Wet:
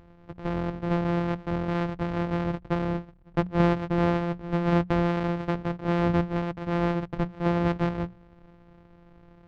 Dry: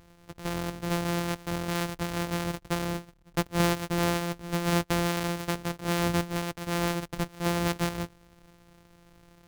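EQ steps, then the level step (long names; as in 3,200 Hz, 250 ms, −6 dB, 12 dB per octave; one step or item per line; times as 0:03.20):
head-to-tape spacing loss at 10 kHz 40 dB
mains-hum notches 60/120/180 Hz
+5.5 dB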